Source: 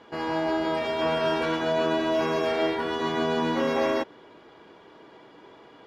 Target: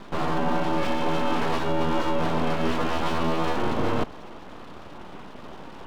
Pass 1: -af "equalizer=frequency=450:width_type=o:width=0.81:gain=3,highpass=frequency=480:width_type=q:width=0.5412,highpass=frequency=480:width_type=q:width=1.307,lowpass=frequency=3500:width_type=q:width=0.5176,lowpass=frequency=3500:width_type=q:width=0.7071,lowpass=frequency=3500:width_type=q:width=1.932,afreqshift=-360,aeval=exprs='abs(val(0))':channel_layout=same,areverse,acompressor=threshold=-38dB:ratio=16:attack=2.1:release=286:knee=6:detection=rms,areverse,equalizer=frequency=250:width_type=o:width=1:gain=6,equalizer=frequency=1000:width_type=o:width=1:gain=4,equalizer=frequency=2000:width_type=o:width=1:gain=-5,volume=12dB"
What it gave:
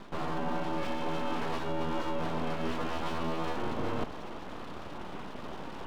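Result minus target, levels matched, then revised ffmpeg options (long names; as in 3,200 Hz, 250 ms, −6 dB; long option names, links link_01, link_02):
downward compressor: peak gain reduction +8.5 dB
-af "equalizer=frequency=450:width_type=o:width=0.81:gain=3,highpass=frequency=480:width_type=q:width=0.5412,highpass=frequency=480:width_type=q:width=1.307,lowpass=frequency=3500:width_type=q:width=0.5176,lowpass=frequency=3500:width_type=q:width=0.7071,lowpass=frequency=3500:width_type=q:width=1.932,afreqshift=-360,aeval=exprs='abs(val(0))':channel_layout=same,areverse,acompressor=threshold=-29dB:ratio=16:attack=2.1:release=286:knee=6:detection=rms,areverse,equalizer=frequency=250:width_type=o:width=1:gain=6,equalizer=frequency=1000:width_type=o:width=1:gain=4,equalizer=frequency=2000:width_type=o:width=1:gain=-5,volume=12dB"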